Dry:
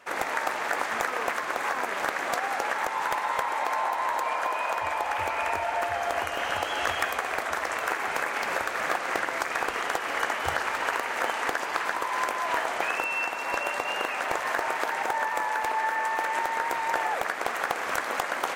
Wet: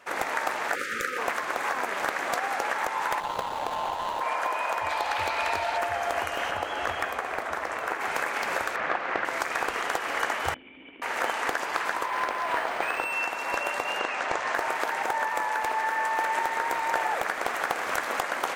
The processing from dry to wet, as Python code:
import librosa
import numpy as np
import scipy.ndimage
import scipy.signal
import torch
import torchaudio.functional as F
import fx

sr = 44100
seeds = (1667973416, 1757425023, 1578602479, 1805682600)

y = fx.spec_erase(x, sr, start_s=0.75, length_s=0.43, low_hz=570.0, high_hz=1200.0)
y = fx.median_filter(y, sr, points=25, at=(3.2, 4.21))
y = fx.peak_eq(y, sr, hz=4100.0, db=11.5, octaves=0.63, at=(4.89, 5.78))
y = fx.high_shelf(y, sr, hz=2300.0, db=-8.0, at=(6.5, 8.01))
y = fx.lowpass(y, sr, hz=3000.0, slope=12, at=(8.76, 9.25))
y = fx.formant_cascade(y, sr, vowel='i', at=(10.54, 11.02))
y = fx.resample_linear(y, sr, factor=4, at=(12.06, 13.13))
y = fx.lowpass(y, sr, hz=7600.0, slope=24, at=(13.99, 14.55))
y = fx.echo_crushed(y, sr, ms=81, feedback_pct=80, bits=9, wet_db=-14.5, at=(15.61, 18.21))